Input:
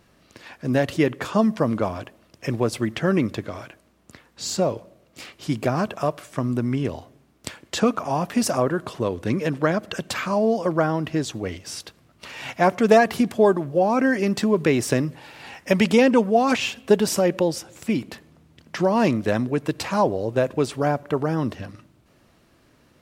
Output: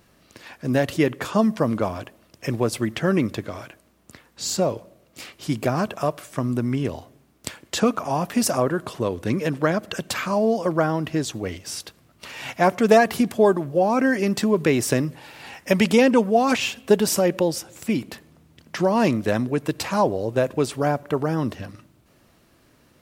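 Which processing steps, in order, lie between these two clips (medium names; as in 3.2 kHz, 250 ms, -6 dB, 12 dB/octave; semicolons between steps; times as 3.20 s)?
treble shelf 9.6 kHz +8 dB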